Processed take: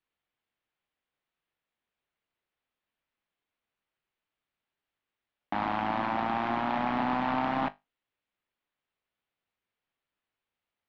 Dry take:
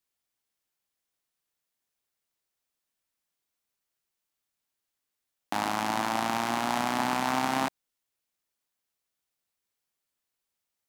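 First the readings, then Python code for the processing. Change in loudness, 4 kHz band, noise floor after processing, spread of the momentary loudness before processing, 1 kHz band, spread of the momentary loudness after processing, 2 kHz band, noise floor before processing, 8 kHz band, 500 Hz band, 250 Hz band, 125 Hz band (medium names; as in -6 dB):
-1.5 dB, -8.5 dB, under -85 dBFS, 4 LU, -0.5 dB, 4 LU, -3.0 dB, -85 dBFS, under -25 dB, -0.5 dB, 0.0 dB, +0.5 dB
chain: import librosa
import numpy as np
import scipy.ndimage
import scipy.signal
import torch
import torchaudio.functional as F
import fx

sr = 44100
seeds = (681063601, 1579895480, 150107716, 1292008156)

p1 = fx.fold_sine(x, sr, drive_db=11, ceiling_db=-11.0)
p2 = x + F.gain(torch.from_numpy(p1), -12.0).numpy()
p3 = scipy.signal.sosfilt(scipy.signal.butter(4, 3300.0, 'lowpass', fs=sr, output='sos'), p2)
p4 = fx.comb_fb(p3, sr, f0_hz=50.0, decay_s=0.2, harmonics='all', damping=0.0, mix_pct=50)
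y = F.gain(torch.from_numpy(p4), -3.0).numpy()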